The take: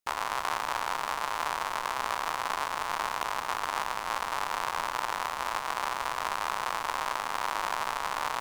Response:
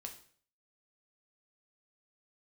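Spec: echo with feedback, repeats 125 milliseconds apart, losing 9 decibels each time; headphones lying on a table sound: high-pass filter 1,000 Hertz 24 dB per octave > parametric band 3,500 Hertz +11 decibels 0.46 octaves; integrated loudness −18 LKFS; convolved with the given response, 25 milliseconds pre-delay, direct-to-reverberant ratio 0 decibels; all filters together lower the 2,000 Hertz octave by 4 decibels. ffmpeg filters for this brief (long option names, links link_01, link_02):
-filter_complex "[0:a]equalizer=frequency=2000:width_type=o:gain=-6.5,aecho=1:1:125|250|375|500:0.355|0.124|0.0435|0.0152,asplit=2[link_01][link_02];[1:a]atrim=start_sample=2205,adelay=25[link_03];[link_02][link_03]afir=irnorm=-1:irlink=0,volume=4dB[link_04];[link_01][link_04]amix=inputs=2:normalize=0,highpass=frequency=1000:width=0.5412,highpass=frequency=1000:width=1.3066,equalizer=frequency=3500:width_type=o:width=0.46:gain=11,volume=12dB"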